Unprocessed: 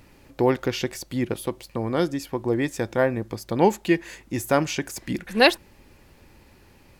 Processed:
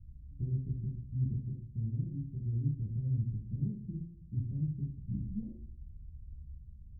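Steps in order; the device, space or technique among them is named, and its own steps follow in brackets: club heard from the street (peak limiter -13.5 dBFS, peak gain reduction 10.5 dB; low-pass 130 Hz 24 dB/octave; reverberation RT60 0.55 s, pre-delay 5 ms, DRR -3.5 dB)

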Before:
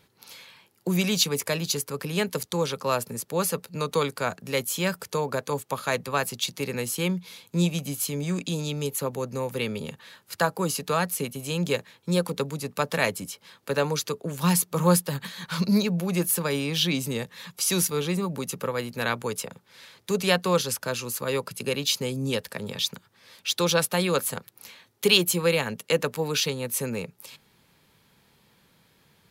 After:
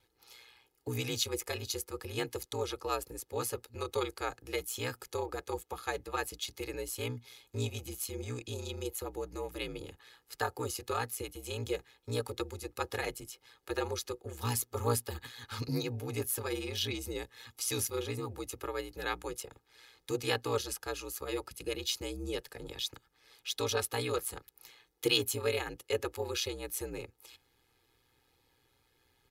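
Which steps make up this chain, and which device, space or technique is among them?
ring-modulated robot voice (ring modulator 61 Hz; comb 2.4 ms, depth 76%); trim -8.5 dB

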